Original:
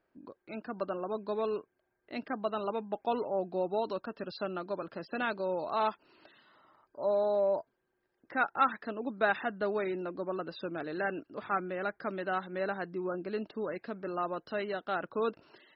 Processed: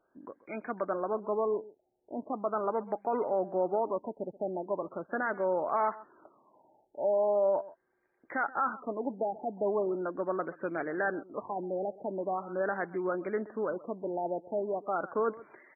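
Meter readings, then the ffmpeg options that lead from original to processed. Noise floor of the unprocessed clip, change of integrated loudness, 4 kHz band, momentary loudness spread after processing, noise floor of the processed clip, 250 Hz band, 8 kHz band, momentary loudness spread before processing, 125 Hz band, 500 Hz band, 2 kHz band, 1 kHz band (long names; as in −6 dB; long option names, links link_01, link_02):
−80 dBFS, +1.5 dB, below −35 dB, 9 LU, −76 dBFS, +1.0 dB, can't be measured, 9 LU, −1.0 dB, +2.5 dB, −2.0 dB, +1.0 dB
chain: -af "lowshelf=frequency=220:gain=-10.5,alimiter=level_in=1.5dB:limit=-24dB:level=0:latency=1:release=23,volume=-1.5dB,aecho=1:1:131:0.112,afftfilt=real='re*lt(b*sr/1024,890*pow(2500/890,0.5+0.5*sin(2*PI*0.4*pts/sr)))':imag='im*lt(b*sr/1024,890*pow(2500/890,0.5+0.5*sin(2*PI*0.4*pts/sr)))':win_size=1024:overlap=0.75,volume=5.5dB"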